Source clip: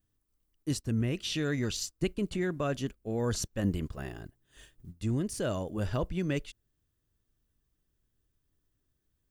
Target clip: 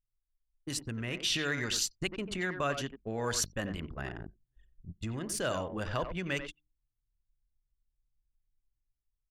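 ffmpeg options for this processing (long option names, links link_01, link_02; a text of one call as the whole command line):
ffmpeg -i in.wav -filter_complex "[0:a]bandreject=frequency=50:width_type=h:width=6,bandreject=frequency=100:width_type=h:width=6,bandreject=frequency=150:width_type=h:width=6,bandreject=frequency=200:width_type=h:width=6,bandreject=frequency=250:width_type=h:width=6,bandreject=frequency=300:width_type=h:width=6,bandreject=frequency=350:width_type=h:width=6,asplit=2[link_01][link_02];[link_02]adelay=90,highpass=300,lowpass=3400,asoftclip=type=hard:threshold=-26.5dB,volume=-8dB[link_03];[link_01][link_03]amix=inputs=2:normalize=0,anlmdn=0.158,acrossover=split=550|2600[link_04][link_05][link_06];[link_04]acompressor=threshold=-41dB:ratio=4[link_07];[link_05]aemphasis=mode=production:type=riaa[link_08];[link_07][link_08][link_06]amix=inputs=3:normalize=0,dynaudnorm=framelen=220:gausssize=7:maxgain=4.5dB" -ar 48000 -c:a libmp3lame -b:a 96k out.mp3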